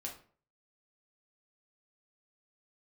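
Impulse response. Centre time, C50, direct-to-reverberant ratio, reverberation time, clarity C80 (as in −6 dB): 21 ms, 8.5 dB, −1.0 dB, 0.45 s, 14.0 dB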